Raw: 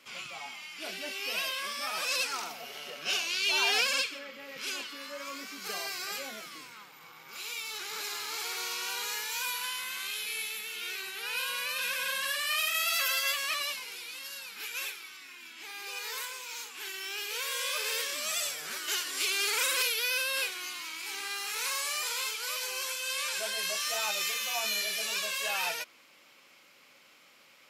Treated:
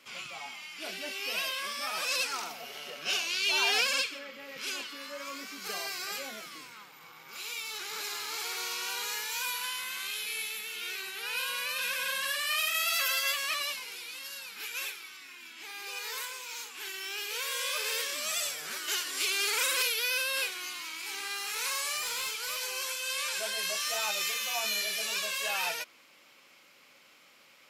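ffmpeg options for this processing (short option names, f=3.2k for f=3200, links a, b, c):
-filter_complex "[0:a]asettb=1/sr,asplit=3[a][b][c];[a]atrim=end=21.974[d];[b]atrim=start=21.97:end=22.59,asetpts=PTS-STARTPTS,afade=t=in:d=0.004:c=qsin,afade=t=out:st=0.616:d=0.004:c=qsin,asoftclip=type=hard:threshold=-29dB[e];[c]atrim=start=22.586[f];[d][e]acrossfade=d=0.004:c1=hsin:c2=qsin[g];[g][f]acrossfade=d=0.004:c1=qsin:c2=hsin"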